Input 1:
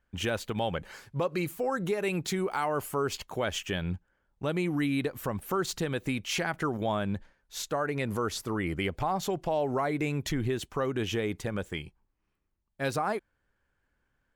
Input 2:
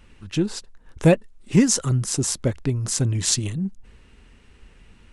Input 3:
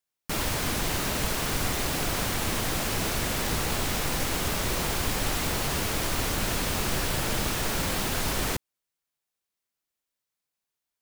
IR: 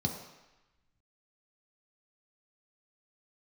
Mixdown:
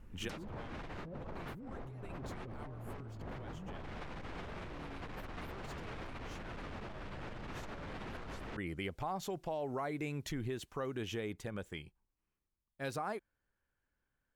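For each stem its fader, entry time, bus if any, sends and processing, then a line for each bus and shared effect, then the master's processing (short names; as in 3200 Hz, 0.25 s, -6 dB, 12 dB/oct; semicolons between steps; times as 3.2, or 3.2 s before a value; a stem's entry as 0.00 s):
-15.5 dB, 0.00 s, no bus, no send, dry
-14.0 dB, 0.00 s, bus A, no send, LPF 1500 Hz; low shelf 330 Hz +6 dB; notches 50/100/150 Hz
-1.5 dB, 0.00 s, bus A, no send, soft clip -28.5 dBFS, distortion -11 dB
bus A: 0.0 dB, treble ducked by the level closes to 980 Hz, closed at -28.5 dBFS; limiter -27.5 dBFS, peak gain reduction 12.5 dB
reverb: off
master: negative-ratio compressor -43 dBFS, ratio -1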